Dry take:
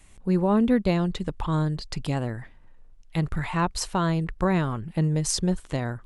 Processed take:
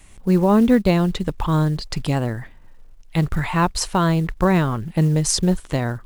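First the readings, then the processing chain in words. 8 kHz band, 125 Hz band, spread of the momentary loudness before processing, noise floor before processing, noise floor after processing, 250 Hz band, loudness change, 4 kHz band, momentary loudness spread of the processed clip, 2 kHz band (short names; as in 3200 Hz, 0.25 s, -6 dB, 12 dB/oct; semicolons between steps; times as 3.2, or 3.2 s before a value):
+6.0 dB, +6.0 dB, 9 LU, -51 dBFS, -45 dBFS, +6.0 dB, +6.0 dB, +6.0 dB, 9 LU, +6.0 dB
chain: short-mantissa float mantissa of 4-bit; gain +6 dB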